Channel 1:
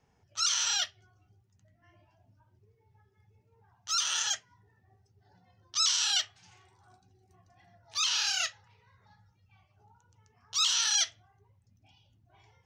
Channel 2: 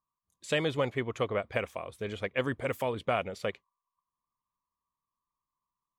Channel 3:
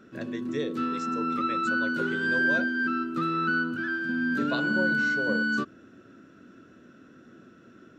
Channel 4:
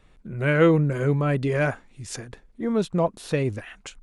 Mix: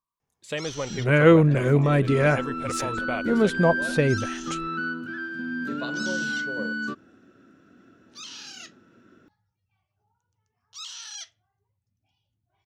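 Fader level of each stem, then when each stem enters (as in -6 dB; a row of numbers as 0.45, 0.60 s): -12.0, -2.0, -3.5, +2.5 dB; 0.20, 0.00, 1.30, 0.65 s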